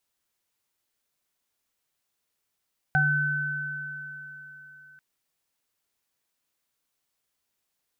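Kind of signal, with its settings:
inharmonic partials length 2.04 s, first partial 148 Hz, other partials 760/1,520 Hz, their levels 0/3 dB, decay 2.76 s, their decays 0.27/4.06 s, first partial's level −23 dB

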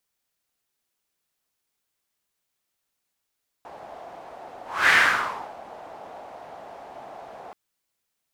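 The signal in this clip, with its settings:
pass-by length 3.88 s, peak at 0:01.26, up 0.29 s, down 0.70 s, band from 720 Hz, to 1,800 Hz, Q 3.8, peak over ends 25 dB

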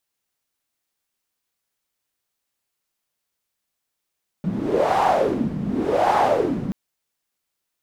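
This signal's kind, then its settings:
wind from filtered noise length 2.28 s, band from 180 Hz, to 830 Hz, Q 5.1, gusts 2, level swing 7.5 dB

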